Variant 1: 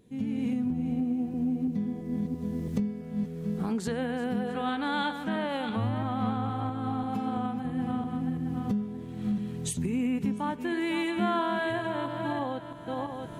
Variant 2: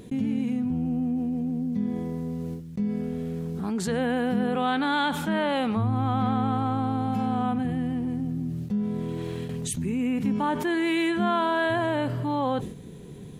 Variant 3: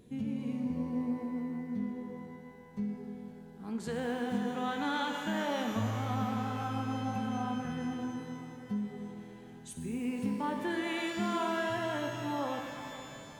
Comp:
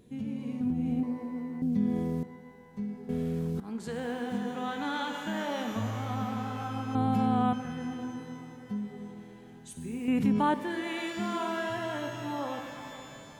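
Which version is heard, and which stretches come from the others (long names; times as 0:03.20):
3
0:00.61–0:01.03: punch in from 1
0:01.62–0:02.23: punch in from 2
0:03.09–0:03.60: punch in from 2
0:06.95–0:07.53: punch in from 2
0:10.08–0:10.54: punch in from 2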